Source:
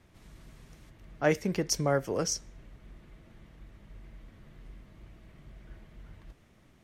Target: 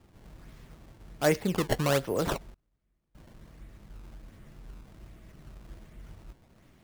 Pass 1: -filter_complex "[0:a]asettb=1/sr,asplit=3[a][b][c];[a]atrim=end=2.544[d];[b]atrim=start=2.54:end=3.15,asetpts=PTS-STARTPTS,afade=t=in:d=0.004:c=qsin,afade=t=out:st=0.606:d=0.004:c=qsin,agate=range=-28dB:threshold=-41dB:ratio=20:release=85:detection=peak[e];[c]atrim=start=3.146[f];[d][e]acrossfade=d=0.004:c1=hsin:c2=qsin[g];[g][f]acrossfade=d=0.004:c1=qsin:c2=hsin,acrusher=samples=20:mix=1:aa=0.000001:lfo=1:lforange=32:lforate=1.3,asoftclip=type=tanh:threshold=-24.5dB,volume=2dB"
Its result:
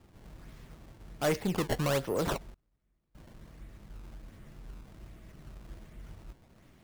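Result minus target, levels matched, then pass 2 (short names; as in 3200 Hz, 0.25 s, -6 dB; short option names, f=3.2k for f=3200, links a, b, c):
soft clip: distortion +14 dB
-filter_complex "[0:a]asettb=1/sr,asplit=3[a][b][c];[a]atrim=end=2.544[d];[b]atrim=start=2.54:end=3.15,asetpts=PTS-STARTPTS,afade=t=in:d=0.004:c=qsin,afade=t=out:st=0.606:d=0.004:c=qsin,agate=range=-28dB:threshold=-41dB:ratio=20:release=85:detection=peak[e];[c]atrim=start=3.146[f];[d][e]acrossfade=d=0.004:c1=hsin:c2=qsin[g];[g][f]acrossfade=d=0.004:c1=qsin:c2=hsin,acrusher=samples=20:mix=1:aa=0.000001:lfo=1:lforange=32:lforate=1.3,asoftclip=type=tanh:threshold=-13dB,volume=2dB"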